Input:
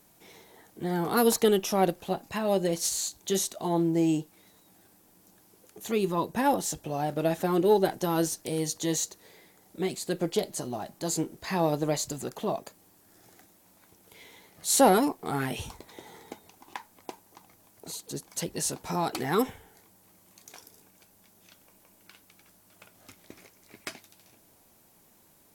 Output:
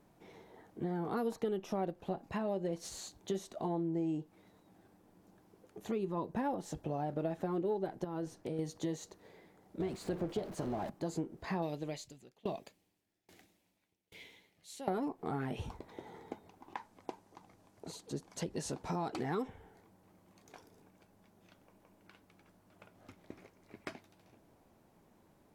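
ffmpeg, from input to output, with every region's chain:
-filter_complex "[0:a]asettb=1/sr,asplit=3[a][b][c];[a]atrim=end=8.044[d];[b]atrim=start=8.04:end=8.59,asetpts=PTS-STARTPTS,afade=t=in:d=0.004:c=qsin,afade=t=out:st=0.546:d=0.004:c=qsin,acompressor=threshold=-31dB:ratio=5:attack=3.2:release=140:knee=1:detection=peak,highshelf=f=4.9k:g=-6.5[e];[c]atrim=start=8.586[f];[d][e]acrossfade=d=0.004:c1=hsin:c2=qsin[g];[g][f]acrossfade=d=0.004:c1=qsin:c2=hsin,asettb=1/sr,asplit=3[h][i][j];[h]atrim=end=9.804[k];[i]atrim=start=9.8:end=10.9,asetpts=PTS-STARTPTS,afade=t=in:d=0.004:c=qsin,afade=t=out:st=1.096:d=0.004:c=qsin,aeval=exprs='val(0)+0.5*0.0224*sgn(val(0))':c=same,tremolo=f=290:d=0.4[l];[j]atrim=start=10.896[m];[k][l]acrossfade=d=0.004:c1=hsin:c2=qsin[n];[n][m]acrossfade=d=0.004:c1=qsin:c2=hsin,asettb=1/sr,asplit=3[o][p][q];[o]atrim=end=11.624[r];[p]atrim=start=11.62:end=14.88,asetpts=PTS-STARTPTS,afade=t=in:d=0.004:c=qsin,afade=t=out:st=3.256:d=0.004:c=qsin,highshelf=f=1.8k:t=q:w=1.5:g=10.5,aeval=exprs='val(0)*pow(10,-29*if(lt(mod(1.2*n/s,1),2*abs(1.2)/1000),1-mod(1.2*n/s,1)/(2*abs(1.2)/1000),(mod(1.2*n/s,1)-2*abs(1.2)/1000)/(1-2*abs(1.2)/1000))/20)':c=same[s];[q]atrim=start=14.876[t];[r][s]acrossfade=d=0.004:c1=hsin:c2=qsin[u];[u][t]acrossfade=d=0.004:c1=qsin:c2=hsin,asettb=1/sr,asplit=3[v][w][x];[v]atrim=end=16.774[y];[w]atrim=start=16.77:end=19.48,asetpts=PTS-STARTPTS,afade=t=in:d=0.004:c=qsin,afade=t=out:st=2.706:d=0.004:c=qsin,lowpass=6.8k,aemphasis=mode=production:type=50fm[z];[x]atrim=start=19.476[aa];[y][z]acrossfade=d=0.004:c1=hsin:c2=qsin[ab];[ab][aa]acrossfade=d=0.004:c1=qsin:c2=hsin,lowpass=f=1k:p=1,acompressor=threshold=-34dB:ratio=4"

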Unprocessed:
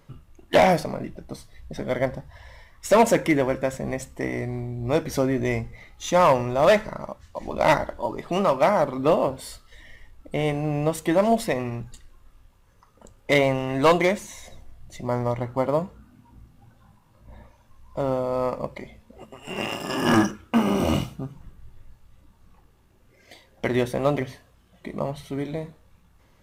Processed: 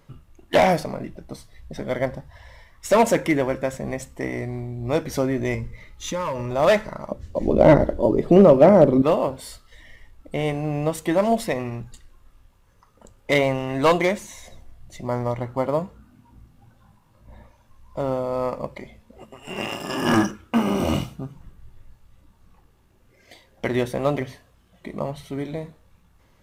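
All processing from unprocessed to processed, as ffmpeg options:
-filter_complex "[0:a]asettb=1/sr,asplit=3[a][b][c];[a]atrim=end=5.544[d];[b]atrim=start=5.54:end=6.51,asetpts=PTS-STARTPTS,afade=t=in:d=0.004:c=qsin,afade=t=out:st=0.966:d=0.004:c=qsin,asuperstop=centerf=740:order=20:qfactor=4,lowshelf=f=140:g=5.5,acompressor=threshold=-24dB:ratio=4:attack=3.2:release=140:knee=1:detection=peak[e];[c]atrim=start=6.506[f];[d][e]acrossfade=d=0.004:c1=hsin:c2=qsin[g];[g][f]acrossfade=d=0.004:c1=qsin:c2=hsin,asettb=1/sr,asplit=3[h][i][j];[h]atrim=end=7.114[k];[i]atrim=start=7.11:end=9.02,asetpts=PTS-STARTPTS,afade=t=in:d=0.004:c=qsin,afade=t=out:st=1.906:d=0.004:c=qsin,acrossover=split=2500[l][m];[m]acompressor=threshold=-44dB:ratio=4:attack=1:release=60[n];[l][n]amix=inputs=2:normalize=0,lowshelf=f=650:t=q:w=1.5:g=11.5,asoftclip=type=hard:threshold=-4dB[o];[j]atrim=start=9.016[p];[k][o]acrossfade=d=0.004:c1=hsin:c2=qsin[q];[q][p]acrossfade=d=0.004:c1=qsin:c2=hsin"

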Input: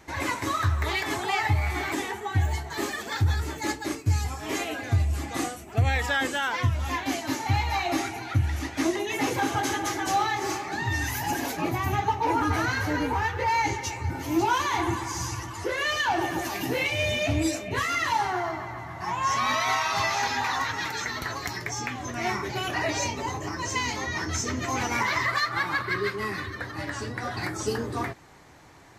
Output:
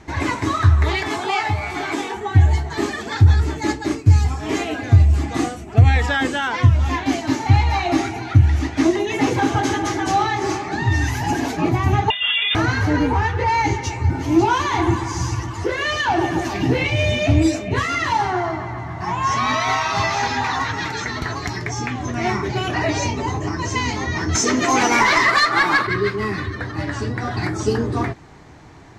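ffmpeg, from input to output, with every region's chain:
-filter_complex "[0:a]asettb=1/sr,asplit=3[a][b][c];[a]atrim=end=1.084[d];[b]atrim=start=1.08:end=2.17,asetpts=PTS-STARTPTS,afade=t=in:d=0.004:c=qsin,afade=t=out:st=1.086:d=0.004:c=qsin,highpass=f=370:p=1,bandreject=f=1.9k:w=10,asplit=2[e][f];[f]adelay=21,volume=-6.5dB[g];[e][g]amix=inputs=2:normalize=0,atrim=end_sample=48069[h];[c]atrim=start=2.166[i];[d][h]acrossfade=d=0.004:c1=hsin:c2=qsin[j];[j][i]acrossfade=d=0.004:c1=qsin:c2=hsin,asettb=1/sr,asplit=3[k][l][m];[k]atrim=end=12.104[n];[l]atrim=start=12.1:end=12.55,asetpts=PTS-STARTPTS,afade=t=in:d=0.004:c=qsin,afade=t=out:st=0.446:d=0.004:c=qsin,lowpass=f=3.1k:t=q:w=0.5098,lowpass=f=3.1k:t=q:w=0.6013,lowpass=f=3.1k:t=q:w=0.9,lowpass=f=3.1k:t=q:w=2.563,afreqshift=-3700,aeval=exprs='val(0)+0.0158*sin(2*PI*2000*n/s)':c=same[o];[m]atrim=start=12.546[p];[n][o]acrossfade=d=0.004:c1=hsin:c2=qsin[q];[q][p]acrossfade=d=0.004:c1=qsin:c2=hsin,asettb=1/sr,asplit=3[r][s][t];[r]atrim=end=16.534[u];[s]atrim=start=16.53:end=16.96,asetpts=PTS-STARTPTS,afade=t=in:d=0.004:c=qsin,afade=t=out:st=0.426:d=0.004:c=qsin,acrossover=split=6100[v][w];[w]acompressor=threshold=-49dB:ratio=4:attack=1:release=60[x];[v][x]amix=inputs=2:normalize=0,lowshelf=f=120:g=9[y];[t]atrim=start=16.956[z];[u][y]acrossfade=d=0.004:c1=hsin:c2=qsin[aa];[aa][z]acrossfade=d=0.004:c1=qsin:c2=hsin,asettb=1/sr,asplit=3[ab][ac][ad];[ab]atrim=end=24.354[ae];[ac]atrim=start=24.35:end=25.87,asetpts=PTS-STARTPTS,afade=t=in:d=0.004:c=qsin,afade=t=out:st=1.516:d=0.004:c=qsin,highpass=290,highshelf=f=8.3k:g=7.5,aeval=exprs='0.2*sin(PI/2*1.41*val(0)/0.2)':c=same[af];[ad]atrim=start=25.866[ag];[ae][af]acrossfade=d=0.004:c1=hsin:c2=qsin[ah];[ah][ag]acrossfade=d=0.004:c1=qsin:c2=hsin,lowpass=7.2k,lowshelf=f=490:g=8,bandreject=f=540:w=12,volume=4dB"

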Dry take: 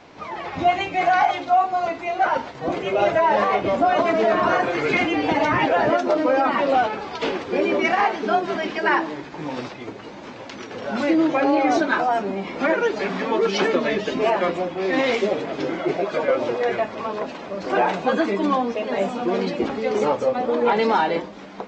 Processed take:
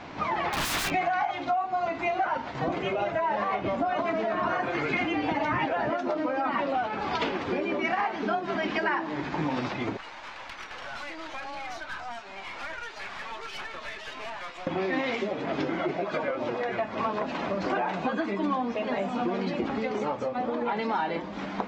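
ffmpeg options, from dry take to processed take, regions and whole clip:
-filter_complex "[0:a]asettb=1/sr,asplit=3[a][b][c];[a]atrim=end=0.504[d];[b]atrim=start=0.5:end=0.92,asetpts=PTS-STARTPTS,afade=t=in:d=0.004:c=qsin,afade=t=out:st=0.416:d=0.004:c=qsin,highpass=210,aeval=exprs='(mod(18.8*val(0)+1,2)-1)/18.8':c=same[e];[c]atrim=start=0.916[f];[d][e]acrossfade=d=0.004:c1=hsin:c2=qsin[g];[g][f]acrossfade=d=0.004:c1=qsin:c2=hsin,asettb=1/sr,asplit=3[h][i][j];[h]atrim=end=9.974[k];[i]atrim=start=9.97:end=14.67,asetpts=PTS-STARTPTS,afade=t=in:d=0.004:c=qsin,afade=t=out:st=4.696:d=0.004:c=qsin,highpass=970,acrossover=split=2900|6000[l][m][n];[l]acompressor=threshold=-39dB:ratio=4[o];[m]acompressor=threshold=-49dB:ratio=4[p];[n]acompressor=threshold=-57dB:ratio=4[q];[o][p][q]amix=inputs=3:normalize=0,aeval=exprs='(tanh(79.4*val(0)+0.6)-tanh(0.6))/79.4':c=same[r];[j]atrim=start=14.666[s];[k][r]acrossfade=d=0.004:c1=hsin:c2=qsin[t];[t][s]acrossfade=d=0.004:c1=qsin:c2=hsin,highshelf=f=5.1k:g=-11.5,acompressor=threshold=-30dB:ratio=10,equalizer=f=460:t=o:w=0.77:g=-6.5,volume=7dB"

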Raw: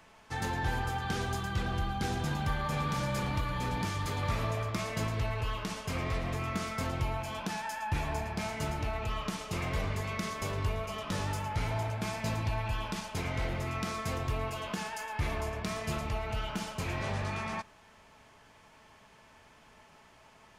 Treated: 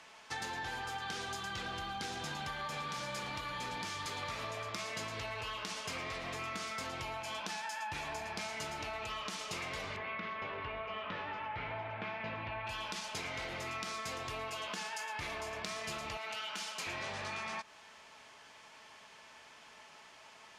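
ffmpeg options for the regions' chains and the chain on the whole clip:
-filter_complex "[0:a]asettb=1/sr,asplit=3[a][b][c];[a]atrim=end=9.964[d];[b]atrim=start=9.96:end=12.67,asetpts=PTS-STARTPTS,afade=t=in:d=0.004:c=qsin,afade=t=out:st=2.706:d=0.004:c=qsin,lowpass=f=2.7k:w=0.5412,lowpass=f=2.7k:w=1.3066,bandreject=f=48.69:t=h:w=4,bandreject=f=97.38:t=h:w=4,bandreject=f=146.07:t=h:w=4,bandreject=f=194.76:t=h:w=4,bandreject=f=243.45:t=h:w=4,bandreject=f=292.14:t=h:w=4,bandreject=f=340.83:t=h:w=4,bandreject=f=389.52:t=h:w=4,bandreject=f=438.21:t=h:w=4,bandreject=f=486.9:t=h:w=4,bandreject=f=535.59:t=h:w=4,bandreject=f=584.28:t=h:w=4,bandreject=f=632.97:t=h:w=4,bandreject=f=681.66:t=h:w=4,bandreject=f=730.35:t=h:w=4,bandreject=f=779.04:t=h:w=4,bandreject=f=827.73:t=h:w=4,bandreject=f=876.42:t=h:w=4,bandreject=f=925.11:t=h:w=4,bandreject=f=973.8:t=h:w=4,bandreject=f=1.02249k:t=h:w=4,bandreject=f=1.07118k:t=h:w=4,bandreject=f=1.11987k:t=h:w=4,bandreject=f=1.16856k:t=h:w=4,bandreject=f=1.21725k:t=h:w=4,bandreject=f=1.26594k:t=h:w=4,bandreject=f=1.31463k:t=h:w=4,bandreject=f=1.36332k:t=h:w=4,bandreject=f=1.41201k:t=h:w=4,bandreject=f=1.4607k:t=h:w=4,bandreject=f=1.50939k:t=h:w=4,bandreject=f=1.55808k:t=h:w=4,bandreject=f=1.60677k:t=h:w=4,bandreject=f=1.65546k:t=h:w=4[e];[c]atrim=start=12.666[f];[d][e]acrossfade=d=0.004:c1=hsin:c2=qsin[g];[g][f]acrossfade=d=0.004:c1=qsin:c2=hsin,asettb=1/sr,asplit=3[h][i][j];[h]atrim=end=16.174[k];[i]atrim=start=16.17:end=16.87,asetpts=PTS-STARTPTS,afade=t=in:d=0.004:c=qsin,afade=t=out:st=0.696:d=0.004:c=qsin,highpass=f=170:w=0.5412,highpass=f=170:w=1.3066,equalizer=f=290:w=0.4:g=-8[l];[j]atrim=start=16.866[m];[k][l]acrossfade=d=0.004:c1=hsin:c2=qsin[n];[n][m]acrossfade=d=0.004:c1=qsin:c2=hsin,lowpass=4.8k,aemphasis=mode=production:type=riaa,acompressor=threshold=-39dB:ratio=6,volume=1.5dB"

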